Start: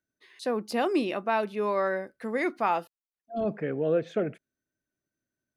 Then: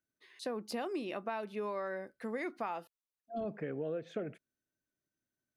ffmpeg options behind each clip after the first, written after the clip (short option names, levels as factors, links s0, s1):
-af "acompressor=threshold=0.0316:ratio=6,volume=0.596"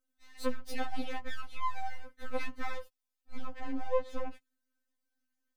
-af "aeval=exprs='max(val(0),0)':c=same,afftfilt=real='re*3.46*eq(mod(b,12),0)':imag='im*3.46*eq(mod(b,12),0)':win_size=2048:overlap=0.75,volume=2.51"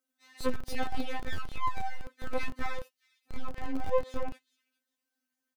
-filter_complex "[0:a]acrossover=split=150|520|2400[s0][s1][s2][s3];[s0]acrusher=bits=6:mix=0:aa=0.000001[s4];[s3]aecho=1:1:409|818:0.1|0.015[s5];[s4][s1][s2][s5]amix=inputs=4:normalize=0,volume=1.33"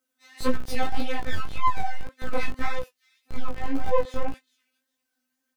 -af "flanger=delay=15.5:depth=5.4:speed=1.8,volume=2.82"